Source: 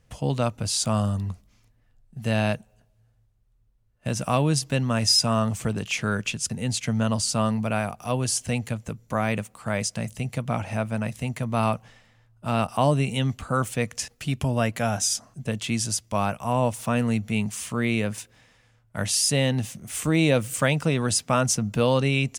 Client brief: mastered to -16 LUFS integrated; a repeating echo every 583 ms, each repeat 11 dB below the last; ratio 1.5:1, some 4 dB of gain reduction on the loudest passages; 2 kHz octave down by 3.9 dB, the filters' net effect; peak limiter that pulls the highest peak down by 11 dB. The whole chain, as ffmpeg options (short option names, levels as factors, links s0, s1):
-af "equalizer=f=2000:t=o:g=-5.5,acompressor=threshold=0.0447:ratio=1.5,alimiter=limit=0.0794:level=0:latency=1,aecho=1:1:583|1166|1749:0.282|0.0789|0.0221,volume=6.31"